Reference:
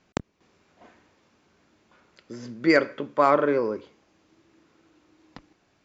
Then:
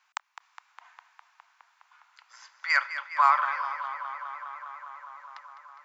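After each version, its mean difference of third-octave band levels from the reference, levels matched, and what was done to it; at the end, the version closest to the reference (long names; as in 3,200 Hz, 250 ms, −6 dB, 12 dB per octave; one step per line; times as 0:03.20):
13.0 dB: Butterworth high-pass 890 Hz 48 dB per octave
parametric band 4,800 Hz −6.5 dB 2.9 octaves
on a send: tape delay 205 ms, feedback 86%, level −10.5 dB, low-pass 4,800 Hz
on the sum: level +4.5 dB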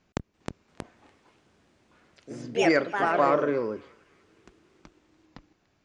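5.0 dB: low-shelf EQ 130 Hz +7.5 dB
delay with pitch and tempo change per echo 341 ms, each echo +3 semitones, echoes 2
feedback echo with a band-pass in the loop 291 ms, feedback 56%, band-pass 2,700 Hz, level −21.5 dB
level −4.5 dB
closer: second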